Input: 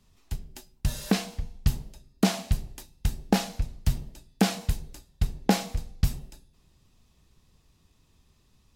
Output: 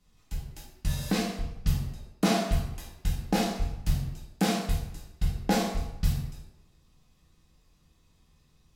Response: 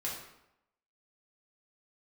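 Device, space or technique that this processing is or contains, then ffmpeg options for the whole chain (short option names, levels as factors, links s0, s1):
bathroom: -filter_complex "[0:a]asettb=1/sr,asplit=3[s0][s1][s2];[s0]atrim=end=1.824[s3];[s1]atrim=start=1.82:end=2.93,asetpts=PTS-STARTPTS,afade=t=in:d=0.004:c=qsin,afade=t=out:st=1.106:d=0.004:c=qsin,equalizer=f=910:w=0.38:g=4[s4];[s2]atrim=start=2.926[s5];[s3][s4]acrossfade=d=0.004:c1=hsin:c2=qsin[s6];[s6][s5]acrossfade=d=0.004:c1=qsin:c2=hsin[s7];[1:a]atrim=start_sample=2205[s8];[s7][s8]afir=irnorm=-1:irlink=0,volume=0.708"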